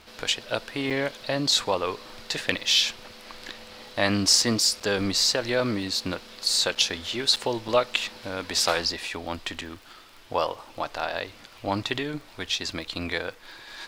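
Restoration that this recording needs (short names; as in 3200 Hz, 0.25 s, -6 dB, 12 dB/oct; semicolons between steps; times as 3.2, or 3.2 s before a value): clip repair -6 dBFS; de-click; interpolate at 0.9/4.8/6.75/7.36/7.68/9.61, 6.4 ms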